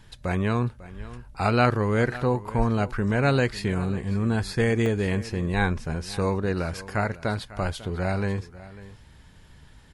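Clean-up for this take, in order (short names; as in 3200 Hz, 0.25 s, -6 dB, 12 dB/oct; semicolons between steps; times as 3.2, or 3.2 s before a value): interpolate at 4.86, 1.9 ms; inverse comb 0.547 s -17.5 dB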